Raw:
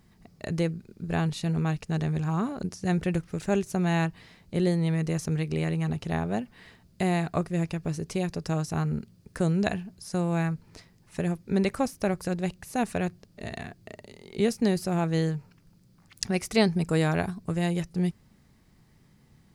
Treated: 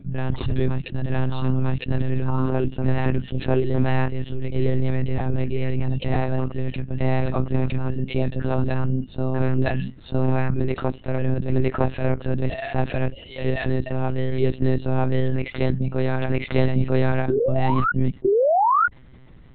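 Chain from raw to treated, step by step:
turntable start at the beginning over 0.72 s
noise reduction from a noise print of the clip's start 20 dB
harmonic and percussive parts rebalanced percussive −7 dB
automatic gain control gain up to 3.5 dB
sound drawn into the spectrogram rise, 0:18.24–0:18.87, 350–1,500 Hz −20 dBFS
on a send: backwards echo 955 ms −5.5 dB
on the sum: one-pitch LPC vocoder at 8 kHz 130 Hz
envelope flattener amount 50%

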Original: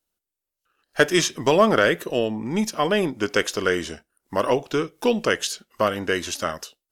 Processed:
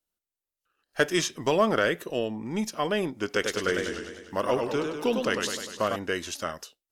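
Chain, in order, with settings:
0:03.24–0:05.96: feedback echo with a swinging delay time 101 ms, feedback 61%, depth 122 cents, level −5 dB
level −6 dB

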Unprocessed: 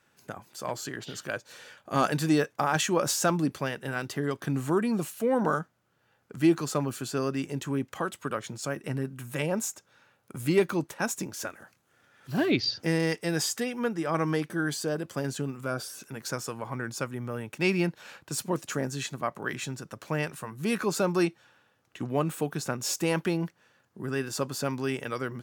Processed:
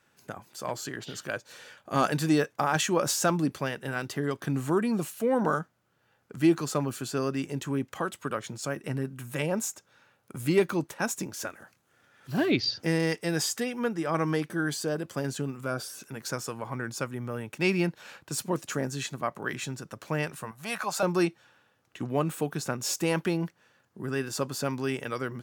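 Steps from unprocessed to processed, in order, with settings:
0:20.51–0:21.03: low shelf with overshoot 510 Hz −10 dB, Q 3

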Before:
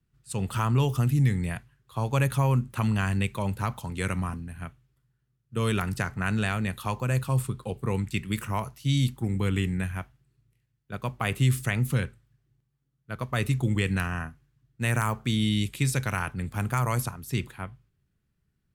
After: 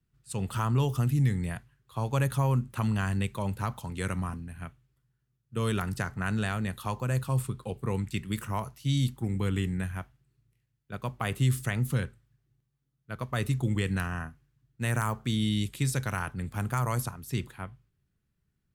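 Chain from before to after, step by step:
dynamic equaliser 2,400 Hz, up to −5 dB, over −47 dBFS, Q 3.1
level −2.5 dB

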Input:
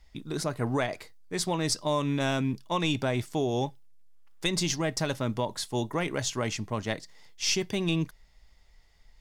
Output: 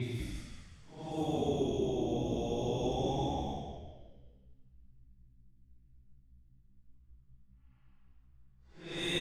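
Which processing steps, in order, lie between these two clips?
extreme stretch with random phases 7.2×, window 0.10 s, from 0:03.19
echo with shifted repeats 190 ms, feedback 44%, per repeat −66 Hz, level −4 dB
low-pass that shuts in the quiet parts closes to 2,500 Hz, open at −25 dBFS
level −7.5 dB

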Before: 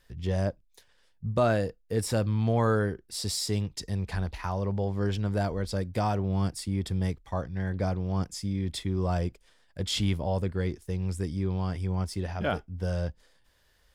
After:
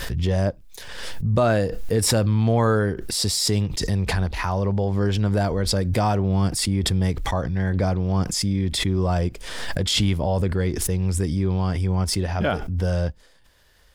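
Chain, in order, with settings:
in parallel at +3 dB: brickwall limiter −21.5 dBFS, peak gain reduction 7.5 dB
on the sum: background raised ahead of every attack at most 36 dB per second

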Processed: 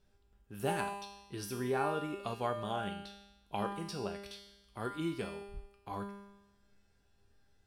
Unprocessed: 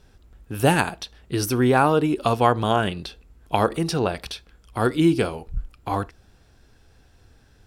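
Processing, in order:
tuned comb filter 200 Hz, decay 0.98 s, mix 90%

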